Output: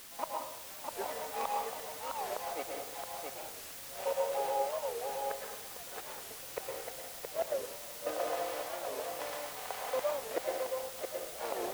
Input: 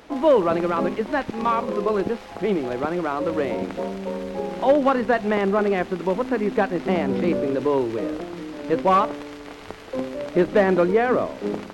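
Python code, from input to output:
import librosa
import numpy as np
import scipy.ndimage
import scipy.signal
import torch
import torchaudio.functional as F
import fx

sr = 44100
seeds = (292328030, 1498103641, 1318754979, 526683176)

p1 = fx.high_shelf(x, sr, hz=5400.0, db=3.5)
p2 = p1 + 0.46 * np.pad(p1, (int(4.0 * sr / 1000.0), 0))[:len(p1)]
p3 = fx.rider(p2, sr, range_db=3, speed_s=2.0)
p4 = p2 + (p3 * librosa.db_to_amplitude(-1.5))
p5 = fx.ladder_highpass(p4, sr, hz=570.0, resonance_pct=50)
p6 = fx.gate_flip(p5, sr, shuts_db=-20.0, range_db=-33)
p7 = fx.step_gate(p6, sr, bpm=80, pattern='.x.xxx.x', floor_db=-24.0, edge_ms=4.5)
p8 = fx.quant_dither(p7, sr, seeds[0], bits=8, dither='triangular')
p9 = p8 + fx.echo_single(p8, sr, ms=670, db=-4.5, dry=0)
p10 = fx.rev_plate(p9, sr, seeds[1], rt60_s=0.85, hf_ratio=0.8, predelay_ms=100, drr_db=0.0)
p11 = fx.record_warp(p10, sr, rpm=45.0, depth_cents=250.0)
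y = p11 * librosa.db_to_amplitude(-2.5)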